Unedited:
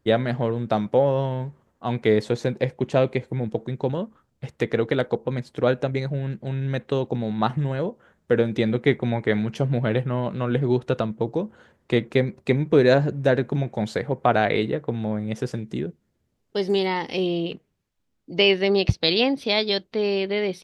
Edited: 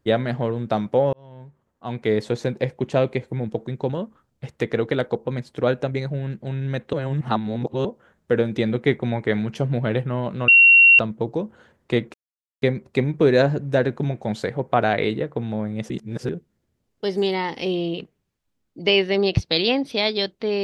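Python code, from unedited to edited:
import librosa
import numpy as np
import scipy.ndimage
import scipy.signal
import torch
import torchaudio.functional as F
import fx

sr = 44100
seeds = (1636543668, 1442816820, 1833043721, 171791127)

y = fx.edit(x, sr, fx.fade_in_span(start_s=1.13, length_s=1.22),
    fx.reverse_span(start_s=6.93, length_s=0.92),
    fx.bleep(start_s=10.48, length_s=0.51, hz=2740.0, db=-8.0),
    fx.insert_silence(at_s=12.14, length_s=0.48),
    fx.reverse_span(start_s=15.42, length_s=0.39), tone=tone)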